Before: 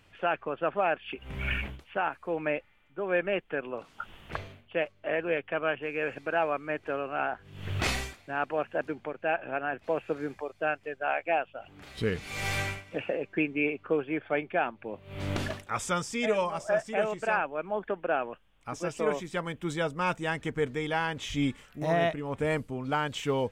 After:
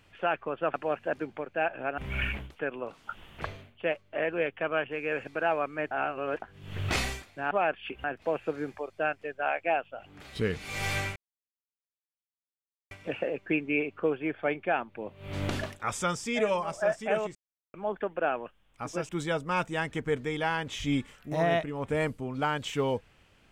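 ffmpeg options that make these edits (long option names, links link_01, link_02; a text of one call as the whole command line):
ffmpeg -i in.wav -filter_complex "[0:a]asplit=12[link_01][link_02][link_03][link_04][link_05][link_06][link_07][link_08][link_09][link_10][link_11][link_12];[link_01]atrim=end=0.742[link_13];[link_02]atrim=start=8.418:end=9.662[link_14];[link_03]atrim=start=1.268:end=1.882[link_15];[link_04]atrim=start=3.498:end=6.822[link_16];[link_05]atrim=start=6.818:end=7.332,asetpts=PTS-STARTPTS,areverse[link_17];[link_06]atrim=start=7.328:end=8.422[link_18];[link_07]atrim=start=0.738:end=1.272[link_19];[link_08]atrim=start=9.658:end=12.78,asetpts=PTS-STARTPTS,afade=type=out:start_time=3.118:duration=0.004:curve=hsin,apad=pad_dur=1.75[link_20];[link_09]atrim=start=12.78:end=17.22,asetpts=PTS-STARTPTS,afade=type=in:duration=0.004:curve=hsin,afade=type=out:start_time=4.436:duration=0.004:curve=hsin[link_21];[link_10]atrim=start=17.22:end=17.61,asetpts=PTS-STARTPTS,volume=0[link_22];[link_11]atrim=start=17.61:end=18.962,asetpts=PTS-STARTPTS,afade=type=in:duration=0.004:curve=hsin[link_23];[link_12]atrim=start=19.588[link_24];[link_13][link_14]acrossfade=duration=0.004:curve1=hsin:curve2=hsin[link_25];[link_25][link_15]acrossfade=duration=0.004:curve1=hsin:curve2=hsin[link_26];[link_26][link_16]acrossfade=duration=0.004:curve1=hsin:curve2=hsin[link_27];[link_27][link_17]acrossfade=duration=0.004:curve1=hsin:curve2=hsin[link_28];[link_28][link_18]acrossfade=duration=0.004:curve1=hsin:curve2=hsin[link_29];[link_29][link_19]acrossfade=duration=0.004:curve1=hsin:curve2=hsin[link_30];[link_20][link_21][link_22][link_23]concat=n=4:v=0:a=1[link_31];[link_30][link_31]acrossfade=duration=0.004:curve1=hsin:curve2=hsin[link_32];[link_32][link_24]acrossfade=duration=0.004:curve1=hsin:curve2=hsin" out.wav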